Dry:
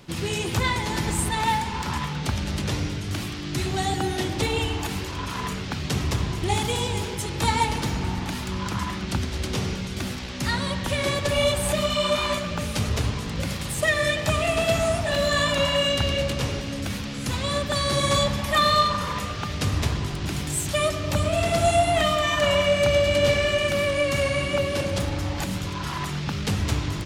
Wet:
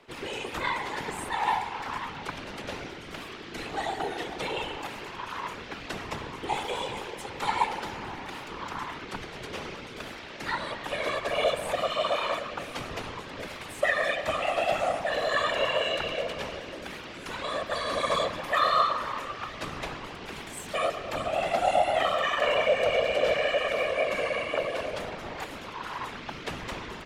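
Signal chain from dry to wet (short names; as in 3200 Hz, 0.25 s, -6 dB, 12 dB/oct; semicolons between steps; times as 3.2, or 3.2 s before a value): whisperiser; three-band isolator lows -16 dB, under 390 Hz, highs -12 dB, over 3100 Hz; gain -2.5 dB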